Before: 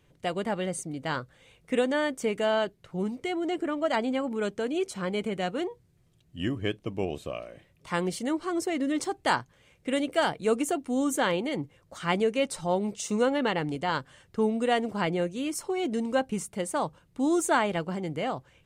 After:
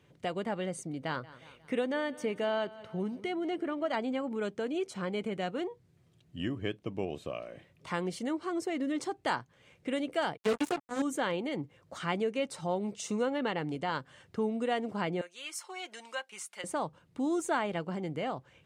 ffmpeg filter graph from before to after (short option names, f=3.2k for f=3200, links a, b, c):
-filter_complex "[0:a]asettb=1/sr,asplit=3[a][b][c];[a]atrim=end=0.994[d];[b]atrim=start=0.99:end=3.96,asetpts=PTS-STARTPTS,afade=t=in:d=0.004:c=qsin,afade=t=out:st=2.966:d=0.004:c=qsin,bandreject=f=7.4k:w=5.8,aecho=1:1:180|360|540:0.0891|0.041|0.0189,atrim=end_sample=130977[e];[c]atrim=start=3.956[f];[d][e]acrossfade=d=0.004:c1=hsin:c2=qsin[g];[g][f]acrossfade=d=0.004:c1=qsin:c2=hsin,asettb=1/sr,asplit=3[h][i][j];[h]atrim=end=10.374[k];[i]atrim=start=10.37:end=11.02,asetpts=PTS-STARTPTS,afade=t=in:d=0.004:c=qsin,afade=t=out:st=0.646:d=0.004:c=qsin,asplit=2[l][m];[m]adelay=14,volume=-3dB[n];[l][n]amix=inputs=2:normalize=0,atrim=end_sample=28665,acrusher=bits=3:mix=0:aa=0.5[o];[j]atrim=start=11.016[p];[k][o]acrossfade=d=0.004:c1=hsin:c2=qsin[q];[q][p]acrossfade=d=0.004:c1=qsin:c2=hsin,asettb=1/sr,asplit=3[r][s][t];[r]atrim=end=15.214[u];[s]atrim=start=15.21:end=16.64,asetpts=PTS-STARTPTS,afade=t=in:d=0.004:c=qsin,afade=t=out:st=1.426:d=0.004:c=qsin,highpass=1.3k,aecho=1:1:5.6:0.37,atrim=end_sample=63063[v];[t]atrim=start=16.636[w];[u][v]acrossfade=d=0.004:c1=hsin:c2=qsin[x];[x][w]acrossfade=d=0.004:c1=qsin:c2=hsin,highshelf=f=8.2k:g=-10,acompressor=threshold=-42dB:ratio=1.5,highpass=90,volume=1.5dB"